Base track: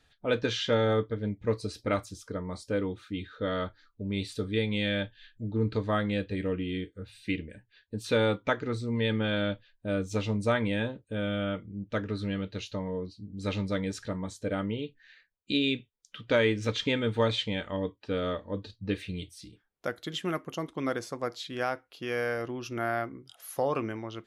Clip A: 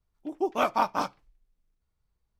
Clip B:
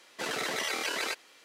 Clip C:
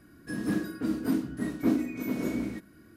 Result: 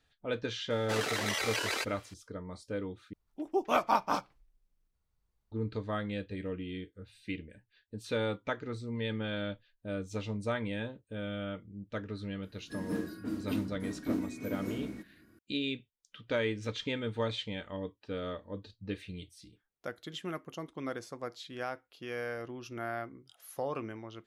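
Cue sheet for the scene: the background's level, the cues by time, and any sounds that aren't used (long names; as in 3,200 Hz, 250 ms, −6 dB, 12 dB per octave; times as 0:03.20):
base track −7 dB
0:00.70: mix in B −1 dB
0:03.13: overwrite with A −2.5 dB
0:12.43: mix in C −7 dB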